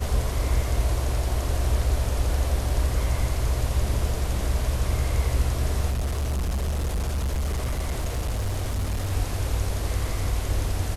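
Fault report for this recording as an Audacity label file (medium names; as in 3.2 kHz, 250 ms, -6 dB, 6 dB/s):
5.900000	9.120000	clipped -22.5 dBFS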